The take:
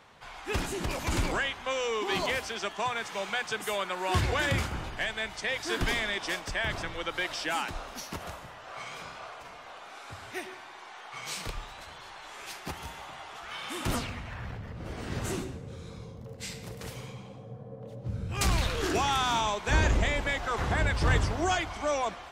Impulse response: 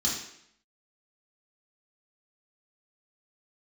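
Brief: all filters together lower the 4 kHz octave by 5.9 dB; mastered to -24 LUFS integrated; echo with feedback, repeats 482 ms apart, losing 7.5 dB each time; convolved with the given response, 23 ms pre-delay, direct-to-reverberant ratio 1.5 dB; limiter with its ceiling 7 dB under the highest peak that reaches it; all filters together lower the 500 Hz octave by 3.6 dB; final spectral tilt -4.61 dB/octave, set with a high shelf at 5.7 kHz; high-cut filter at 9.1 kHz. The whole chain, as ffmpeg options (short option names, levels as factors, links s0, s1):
-filter_complex "[0:a]lowpass=9100,equalizer=f=500:t=o:g=-4.5,equalizer=f=4000:t=o:g=-6,highshelf=f=5700:g=-5,alimiter=limit=0.0891:level=0:latency=1,aecho=1:1:482|964|1446|1928|2410:0.422|0.177|0.0744|0.0312|0.0131,asplit=2[s0][s1];[1:a]atrim=start_sample=2205,adelay=23[s2];[s1][s2]afir=irnorm=-1:irlink=0,volume=0.376[s3];[s0][s3]amix=inputs=2:normalize=0,volume=2.11"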